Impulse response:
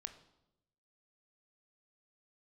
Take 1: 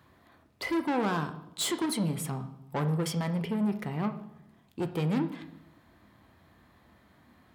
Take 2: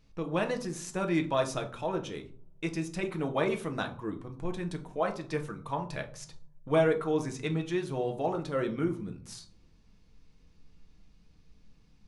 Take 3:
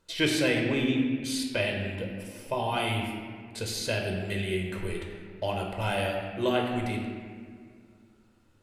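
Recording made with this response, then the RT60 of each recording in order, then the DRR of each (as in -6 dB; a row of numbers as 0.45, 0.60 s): 1; 0.90, 0.50, 2.0 s; 8.0, 4.0, 1.0 dB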